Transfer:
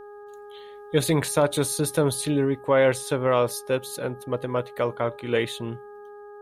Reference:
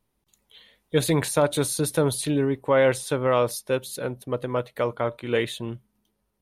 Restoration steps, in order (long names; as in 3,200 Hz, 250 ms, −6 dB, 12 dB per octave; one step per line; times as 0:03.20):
hum removal 412.1 Hz, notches 4